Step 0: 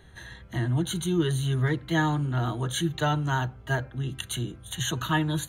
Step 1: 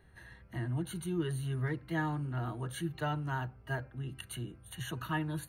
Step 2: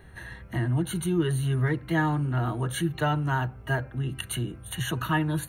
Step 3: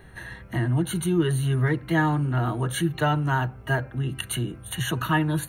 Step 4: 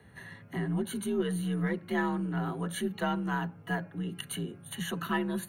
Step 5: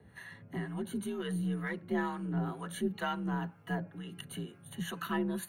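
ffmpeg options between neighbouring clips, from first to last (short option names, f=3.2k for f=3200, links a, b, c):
-af "superequalizer=13b=0.355:15b=0.282,volume=-9dB"
-filter_complex "[0:a]bandreject=f=4.8k:w=5.3,asplit=2[a][b];[b]acompressor=threshold=-41dB:ratio=6,volume=-2.5dB[c];[a][c]amix=inputs=2:normalize=0,volume=7dB"
-af "equalizer=f=69:t=o:w=0.77:g=-5,volume=3dB"
-af "afreqshift=46,aeval=exprs='0.376*(cos(1*acos(clip(val(0)/0.376,-1,1)))-cos(1*PI/2))+0.0376*(cos(2*acos(clip(val(0)/0.376,-1,1)))-cos(2*PI/2))':c=same,volume=-8dB"
-filter_complex "[0:a]acrossover=split=770[a][b];[a]aeval=exprs='val(0)*(1-0.7/2+0.7/2*cos(2*PI*2.1*n/s))':c=same[c];[b]aeval=exprs='val(0)*(1-0.7/2-0.7/2*cos(2*PI*2.1*n/s))':c=same[d];[c][d]amix=inputs=2:normalize=0"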